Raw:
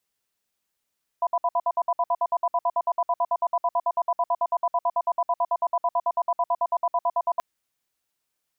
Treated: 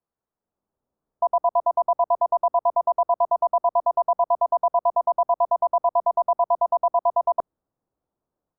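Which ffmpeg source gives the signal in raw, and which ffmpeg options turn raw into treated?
-f lavfi -i "aevalsrc='0.0794*(sin(2*PI*693*t)+sin(2*PI*993*t))*clip(min(mod(t,0.11),0.05-mod(t,0.11))/0.005,0,1)':d=6.18:s=44100"
-filter_complex "[0:a]lowpass=f=1200:w=0.5412,lowpass=f=1200:w=1.3066,acrossover=split=700|740[s0][s1][s2];[s0]dynaudnorm=f=370:g=3:m=2.99[s3];[s3][s1][s2]amix=inputs=3:normalize=0"

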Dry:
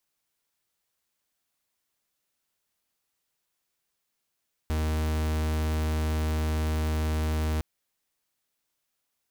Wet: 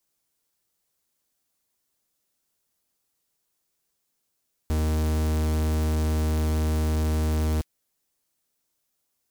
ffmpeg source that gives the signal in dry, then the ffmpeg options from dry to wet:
-f lavfi -i "aevalsrc='0.0447*(2*lt(mod(77.8*t,1),0.44)-1)':d=2.91:s=44100"
-filter_complex "[0:a]bass=f=250:g=-2,treble=f=4000:g=8,acrossover=split=510|1700[s0][s1][s2];[s0]acontrast=34[s3];[s2]flanger=delay=7.1:depth=6.7:regen=-19:speed=1:shape=sinusoidal[s4];[s3][s1][s4]amix=inputs=3:normalize=0"

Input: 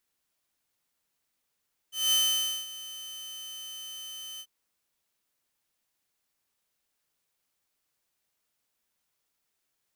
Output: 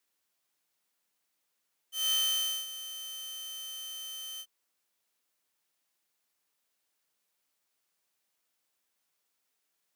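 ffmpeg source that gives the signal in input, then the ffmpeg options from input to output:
-f lavfi -i "aevalsrc='0.119*(2*mod(3060*t,1)-1)':d=2.539:s=44100,afade=t=in:d=0.201,afade=t=out:st=0.201:d=0.535:silence=0.126,afade=t=out:st=2.48:d=0.059"
-af "afreqshift=29,asoftclip=type=tanh:threshold=0.0668,highpass=f=230:p=1"

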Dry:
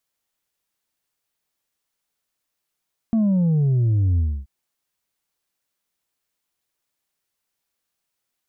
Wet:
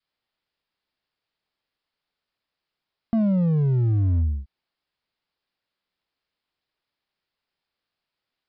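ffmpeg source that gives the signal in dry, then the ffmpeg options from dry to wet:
-f lavfi -i "aevalsrc='0.158*clip((1.33-t)/0.28,0,1)*tanh(1.41*sin(2*PI*230*1.33/log(65/230)*(exp(log(65/230)*t/1.33)-1)))/tanh(1.41)':d=1.33:s=44100"
-af "adynamicequalizer=threshold=0.0126:dfrequency=470:dqfactor=0.96:tfrequency=470:tqfactor=0.96:attack=5:release=100:ratio=0.375:range=3.5:mode=cutabove:tftype=bell,aresample=11025,asoftclip=type=hard:threshold=0.119,aresample=44100"

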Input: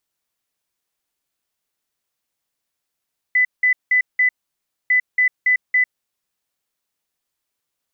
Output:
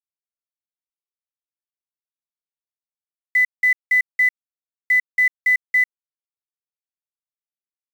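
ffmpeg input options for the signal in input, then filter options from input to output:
-f lavfi -i "aevalsrc='0.251*sin(2*PI*2000*t)*clip(min(mod(mod(t,1.55),0.28),0.1-mod(mod(t,1.55),0.28))/0.005,0,1)*lt(mod(t,1.55),1.12)':d=3.1:s=44100"
-af "acrusher=bits=7:dc=4:mix=0:aa=0.000001"

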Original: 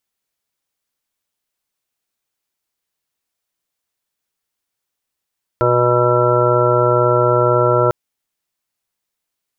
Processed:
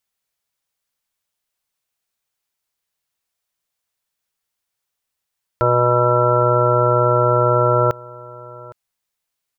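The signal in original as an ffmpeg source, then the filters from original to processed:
-f lavfi -i "aevalsrc='0.112*sin(2*PI*122*t)+0.0126*sin(2*PI*244*t)+0.126*sin(2*PI*366*t)+0.141*sin(2*PI*488*t)+0.141*sin(2*PI*610*t)+0.015*sin(2*PI*732*t)+0.0335*sin(2*PI*854*t)+0.075*sin(2*PI*976*t)+0.0126*sin(2*PI*1098*t)+0.0126*sin(2*PI*1220*t)+0.126*sin(2*PI*1342*t)':d=2.3:s=44100"
-af "equalizer=f=300:t=o:w=1:g=-6,aecho=1:1:812:0.0841"

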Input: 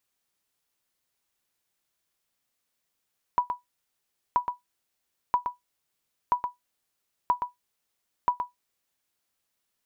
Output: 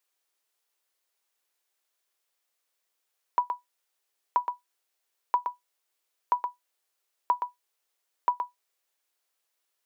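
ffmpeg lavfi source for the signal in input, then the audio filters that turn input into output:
-f lavfi -i "aevalsrc='0.211*(sin(2*PI*981*mod(t,0.98))*exp(-6.91*mod(t,0.98)/0.15)+0.447*sin(2*PI*981*max(mod(t,0.98)-0.12,0))*exp(-6.91*max(mod(t,0.98)-0.12,0)/0.15))':d=5.88:s=44100"
-af "highpass=f=360:w=0.5412,highpass=f=360:w=1.3066"

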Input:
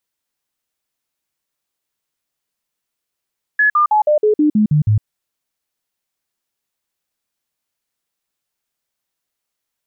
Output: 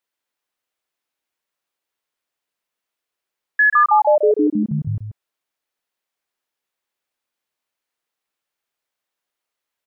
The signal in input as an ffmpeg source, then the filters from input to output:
-f lavfi -i "aevalsrc='0.335*clip(min(mod(t,0.16),0.11-mod(t,0.16))/0.005,0,1)*sin(2*PI*1700*pow(2,-floor(t/0.16)/2)*mod(t,0.16))':d=1.44:s=44100"
-filter_complex "[0:a]bass=f=250:g=-10,treble=f=4000:g=-7,asplit=2[s0][s1];[s1]aecho=0:1:135:0.422[s2];[s0][s2]amix=inputs=2:normalize=0"

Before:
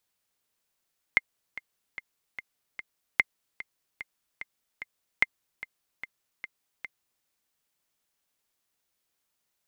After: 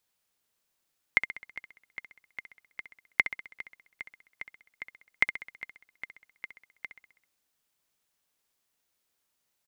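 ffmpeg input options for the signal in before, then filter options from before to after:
-f lavfi -i "aevalsrc='pow(10,(-6.5-17*gte(mod(t,5*60/148),60/148))/20)*sin(2*PI*2100*mod(t,60/148))*exp(-6.91*mod(t,60/148)/0.03)':d=6.08:s=44100"
-af "aecho=1:1:65|130|195|260|325|390:0.282|0.158|0.0884|0.0495|0.0277|0.0155"

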